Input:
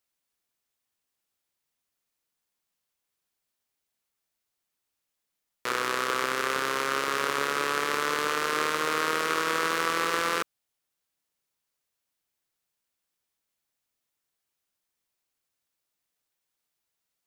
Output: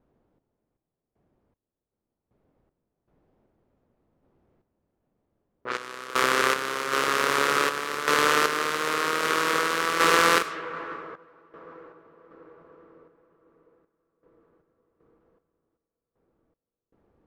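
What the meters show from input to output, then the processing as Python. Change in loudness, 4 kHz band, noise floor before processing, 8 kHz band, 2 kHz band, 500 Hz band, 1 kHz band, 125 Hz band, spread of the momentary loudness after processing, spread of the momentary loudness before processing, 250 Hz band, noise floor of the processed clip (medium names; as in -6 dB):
+3.5 dB, +3.5 dB, -83 dBFS, +3.5 dB, +4.0 dB, +4.0 dB, +3.5 dB, +4.0 dB, 14 LU, 3 LU, +3.5 dB, under -85 dBFS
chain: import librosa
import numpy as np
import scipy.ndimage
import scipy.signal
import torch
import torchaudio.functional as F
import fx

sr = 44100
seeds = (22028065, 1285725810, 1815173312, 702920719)

p1 = fx.echo_diffused(x, sr, ms=553, feedback_pct=68, wet_db=-11)
p2 = fx.quant_dither(p1, sr, seeds[0], bits=8, dither='triangular')
p3 = p1 + (p2 * 10.0 ** (-8.0 / 20.0))
p4 = fx.env_lowpass(p3, sr, base_hz=390.0, full_db=-20.5)
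p5 = fx.tremolo_random(p4, sr, seeds[1], hz=2.6, depth_pct=95)
y = p5 * 10.0 ** (5.5 / 20.0)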